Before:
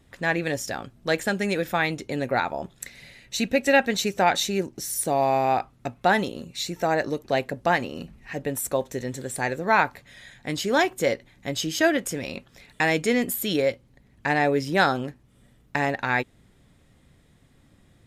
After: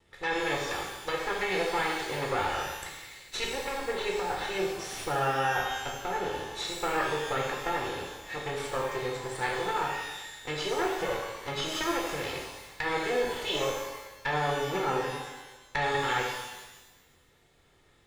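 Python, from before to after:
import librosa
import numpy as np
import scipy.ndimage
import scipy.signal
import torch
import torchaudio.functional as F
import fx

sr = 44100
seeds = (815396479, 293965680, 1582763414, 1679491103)

y = fx.lower_of_two(x, sr, delay_ms=2.3)
y = fx.env_lowpass_down(y, sr, base_hz=1200.0, full_db=-19.0)
y = fx.lowpass(y, sr, hz=4000.0, slope=6)
y = fx.low_shelf(y, sr, hz=450.0, db=-10.0)
y = fx.over_compress(y, sr, threshold_db=-28.0, ratio=-0.5)
y = fx.rev_shimmer(y, sr, seeds[0], rt60_s=1.1, semitones=12, shimmer_db=-8, drr_db=-2.0)
y = F.gain(torch.from_numpy(y), -2.5).numpy()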